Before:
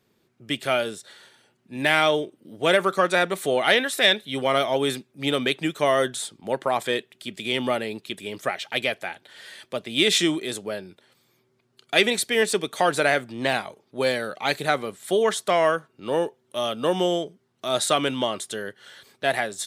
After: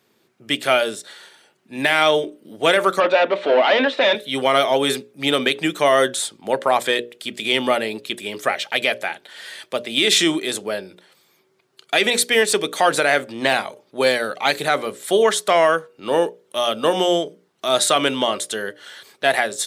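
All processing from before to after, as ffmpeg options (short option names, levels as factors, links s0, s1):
-filter_complex "[0:a]asettb=1/sr,asplit=3[s0][s1][s2];[s0]atrim=end=3.004[s3];[s1]atrim=start=3:end=4.15,asetpts=PTS-STARTPTS,afade=t=in:d=0.004:c=qsin,afade=t=out:st=1.146:d=0.004:c=qsin,volume=14.1,asoftclip=hard,volume=0.0708,highpass=f=210:w=0.5412,highpass=f=210:w=1.3066,equalizer=f=260:t=q:w=4:g=8,equalizer=f=580:t=q:w=4:g=10,equalizer=f=930:t=q:w=4:g=7,equalizer=f=2700:t=q:w=4:g=4,lowpass=f=3800:w=0.5412,lowpass=f=3800:w=1.3066[s4];[s2]atrim=start=4.146[s5];[s3][s4]acrossfade=d=0.004:c1=hsin:c2=qsin[s6];[s6][s5]acrossfade=d=0.004:c1=qsin:c2=hsin,highpass=f=270:p=1,bandreject=f=60:t=h:w=6,bandreject=f=120:t=h:w=6,bandreject=f=180:t=h:w=6,bandreject=f=240:t=h:w=6,bandreject=f=300:t=h:w=6,bandreject=f=360:t=h:w=6,bandreject=f=420:t=h:w=6,bandreject=f=480:t=h:w=6,bandreject=f=540:t=h:w=6,bandreject=f=600:t=h:w=6,alimiter=level_in=3.55:limit=0.891:release=50:level=0:latency=1,volume=0.631"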